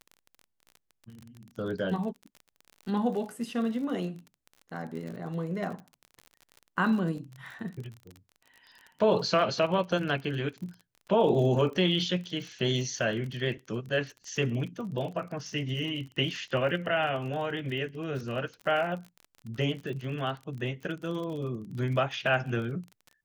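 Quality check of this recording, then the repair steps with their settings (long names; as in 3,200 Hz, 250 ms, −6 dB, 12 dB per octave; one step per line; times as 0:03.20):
surface crackle 35 per second −37 dBFS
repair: click removal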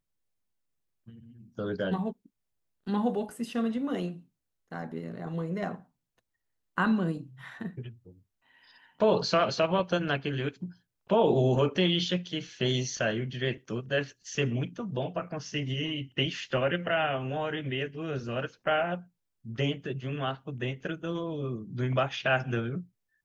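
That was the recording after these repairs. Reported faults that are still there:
none of them is left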